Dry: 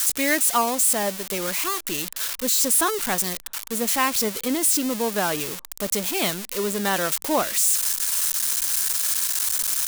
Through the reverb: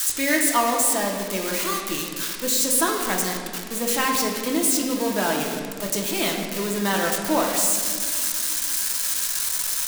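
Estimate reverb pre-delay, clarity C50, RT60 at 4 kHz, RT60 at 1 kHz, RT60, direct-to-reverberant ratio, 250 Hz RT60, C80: 3 ms, 3.5 dB, 1.3 s, 1.9 s, 2.2 s, 0.0 dB, 3.1 s, 5.0 dB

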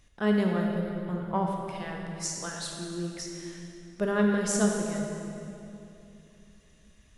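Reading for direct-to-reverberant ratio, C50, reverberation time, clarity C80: 0.0 dB, 1.5 dB, 2.9 s, 2.5 dB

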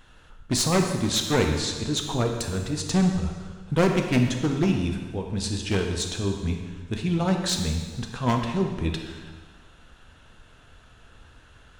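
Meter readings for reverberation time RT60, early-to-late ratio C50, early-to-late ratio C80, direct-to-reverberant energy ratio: 1.5 s, 5.0 dB, 6.5 dB, 3.0 dB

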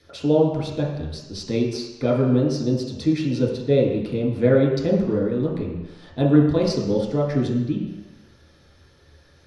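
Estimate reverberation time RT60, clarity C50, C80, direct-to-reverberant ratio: 1.1 s, 2.5 dB, 5.5 dB, -5.0 dB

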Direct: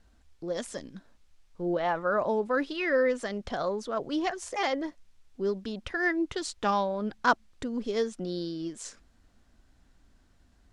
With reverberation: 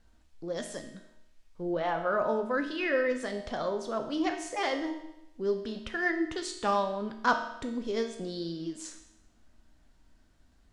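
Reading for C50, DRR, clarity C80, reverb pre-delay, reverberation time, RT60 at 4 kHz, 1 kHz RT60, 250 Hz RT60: 7.5 dB, 4.0 dB, 9.5 dB, 9 ms, 0.90 s, 0.85 s, 0.90 s, 0.85 s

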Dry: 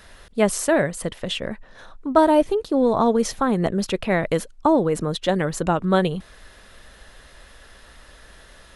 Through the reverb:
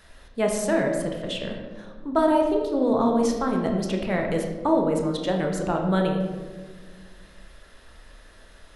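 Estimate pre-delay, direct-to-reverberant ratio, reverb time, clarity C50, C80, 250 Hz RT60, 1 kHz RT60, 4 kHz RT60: 20 ms, 1.5 dB, 1.5 s, 4.5 dB, 6.0 dB, 2.5 s, 1.2 s, 0.80 s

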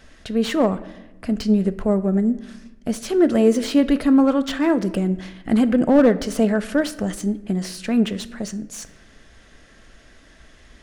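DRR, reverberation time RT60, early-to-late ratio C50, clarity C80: 11.0 dB, 1.0 s, 16.0 dB, 18.0 dB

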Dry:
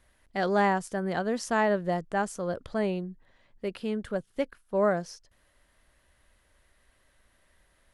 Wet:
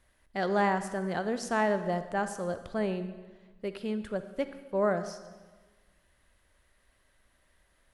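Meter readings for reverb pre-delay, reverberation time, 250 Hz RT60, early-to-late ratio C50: 38 ms, 1.4 s, 1.5 s, 11.0 dB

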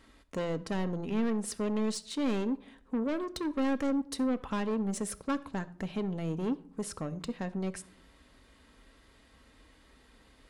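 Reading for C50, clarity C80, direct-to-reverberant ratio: 18.0 dB, 21.0 dB, 8.5 dB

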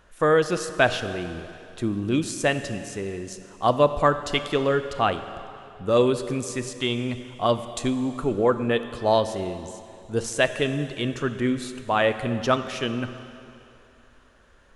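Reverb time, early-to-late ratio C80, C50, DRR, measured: 2.8 s, 11.5 dB, 10.5 dB, 10.0 dB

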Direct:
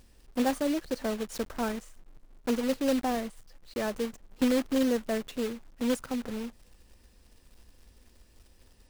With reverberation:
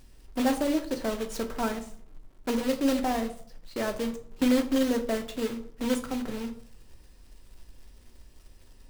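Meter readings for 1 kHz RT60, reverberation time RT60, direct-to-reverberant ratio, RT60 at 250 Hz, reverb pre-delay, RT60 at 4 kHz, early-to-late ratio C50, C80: 0.50 s, 0.55 s, 5.0 dB, 1.1 s, 3 ms, 0.35 s, 12.5 dB, 16.5 dB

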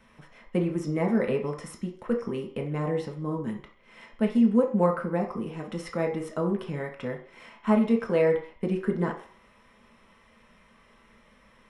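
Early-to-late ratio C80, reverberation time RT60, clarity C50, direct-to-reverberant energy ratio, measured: 13.0 dB, 0.50 s, 8.5 dB, 0.5 dB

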